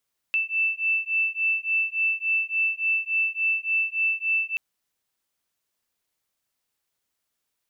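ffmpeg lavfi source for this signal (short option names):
-f lavfi -i "aevalsrc='0.0562*(sin(2*PI*2650*t)+sin(2*PI*2653.5*t))':d=4.23:s=44100"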